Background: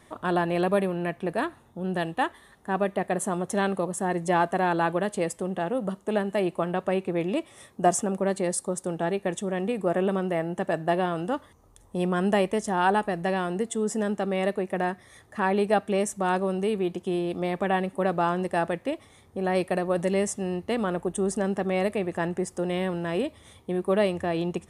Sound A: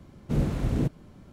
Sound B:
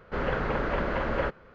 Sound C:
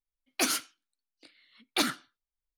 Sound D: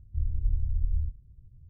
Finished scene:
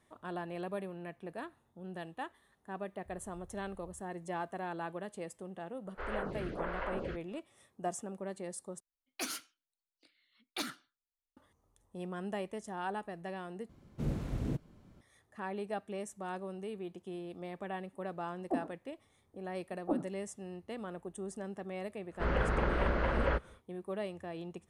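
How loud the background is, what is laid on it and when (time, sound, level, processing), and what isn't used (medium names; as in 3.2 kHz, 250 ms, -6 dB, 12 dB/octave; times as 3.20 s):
background -15.5 dB
2.91 s: add D -13 dB + tilt EQ +4 dB/octave
5.86 s: add B -7.5 dB + lamp-driven phase shifter 1.4 Hz
8.80 s: replace with C -11 dB
13.69 s: replace with A -9.5 dB
18.11 s: add C -1 dB + steep low-pass 810 Hz
22.08 s: add B -4 dB, fades 0.10 s + peaking EQ 61 Hz +8 dB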